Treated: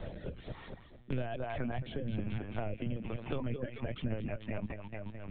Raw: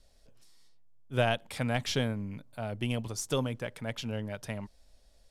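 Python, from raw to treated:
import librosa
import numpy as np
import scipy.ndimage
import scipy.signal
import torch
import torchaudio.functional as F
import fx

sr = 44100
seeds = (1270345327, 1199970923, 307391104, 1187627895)

p1 = fx.rattle_buzz(x, sr, strikes_db=-43.0, level_db=-33.0)
p2 = scipy.signal.sosfilt(scipy.signal.bessel(2, 1700.0, 'lowpass', norm='mag', fs=sr, output='sos'), p1)
p3 = fx.over_compress(p2, sr, threshold_db=-35.0, ratio=-1.0)
p4 = p2 + (p3 * librosa.db_to_amplitude(0.5))
p5 = scipy.signal.sosfilt(scipy.signal.butter(4, 51.0, 'highpass', fs=sr, output='sos'), p4)
p6 = fx.peak_eq(p5, sr, hz=66.0, db=6.0, octaves=1.8)
p7 = p6 + fx.echo_feedback(p6, sr, ms=217, feedback_pct=54, wet_db=-4.5, dry=0)
p8 = fx.rotary_switch(p7, sr, hz=1.1, then_hz=7.5, switch_at_s=3.33)
p9 = fx.dereverb_blind(p8, sr, rt60_s=1.9)
p10 = fx.lpc_vocoder(p9, sr, seeds[0], excitation='pitch_kept', order=16)
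p11 = fx.band_squash(p10, sr, depth_pct=100)
y = p11 * librosa.db_to_amplitude(-6.0)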